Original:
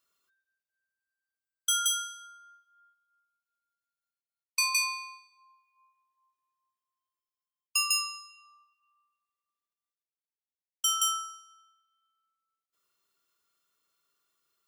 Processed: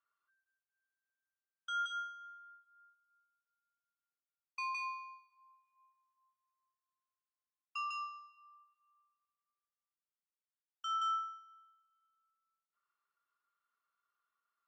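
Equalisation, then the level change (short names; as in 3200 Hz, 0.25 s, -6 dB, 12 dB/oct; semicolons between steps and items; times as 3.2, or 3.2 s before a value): band-pass 1300 Hz, Q 2.2; air absorption 130 m; 0.0 dB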